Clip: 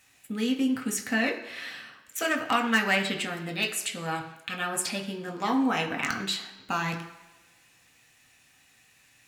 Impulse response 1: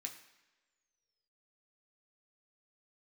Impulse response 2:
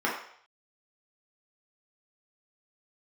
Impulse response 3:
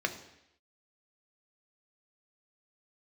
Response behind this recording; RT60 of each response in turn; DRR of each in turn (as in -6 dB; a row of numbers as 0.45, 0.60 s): 1; not exponential, 0.60 s, 0.80 s; 1.5, -5.5, 5.5 dB